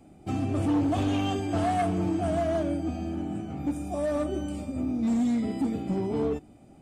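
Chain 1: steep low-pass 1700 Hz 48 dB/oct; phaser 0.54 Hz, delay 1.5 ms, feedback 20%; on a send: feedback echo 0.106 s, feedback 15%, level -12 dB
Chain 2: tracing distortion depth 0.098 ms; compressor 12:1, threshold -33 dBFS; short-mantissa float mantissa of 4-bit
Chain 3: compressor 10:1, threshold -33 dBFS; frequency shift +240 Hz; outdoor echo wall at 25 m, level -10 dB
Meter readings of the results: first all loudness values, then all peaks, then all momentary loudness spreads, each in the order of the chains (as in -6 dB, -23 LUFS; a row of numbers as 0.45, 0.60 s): -28.0, -37.0, -36.0 LUFS; -17.0, -26.5, -23.5 dBFS; 7, 3, 3 LU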